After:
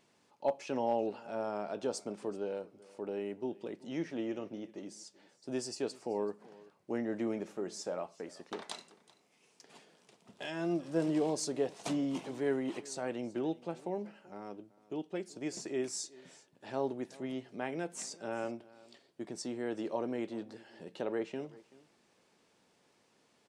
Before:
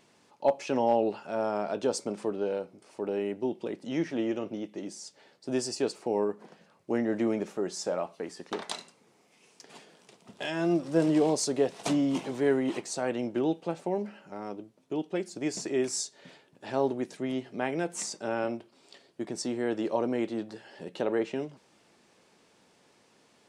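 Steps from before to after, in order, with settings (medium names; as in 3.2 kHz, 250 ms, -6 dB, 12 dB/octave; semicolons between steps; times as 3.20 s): delay 382 ms -21.5 dB; trim -7 dB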